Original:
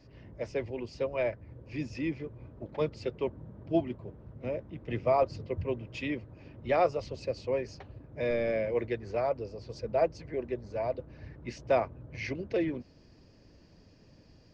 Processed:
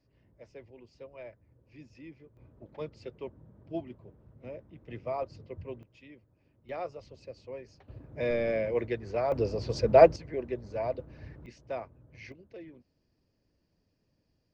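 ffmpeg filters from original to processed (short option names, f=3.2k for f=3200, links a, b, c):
-af "asetnsamples=n=441:p=0,asendcmd='2.37 volume volume -8.5dB;5.83 volume volume -19dB;6.69 volume volume -11.5dB;7.88 volume volume 0.5dB;9.32 volume volume 10dB;10.16 volume volume 0dB;11.46 volume volume -10.5dB;12.32 volume volume -17dB',volume=-15.5dB"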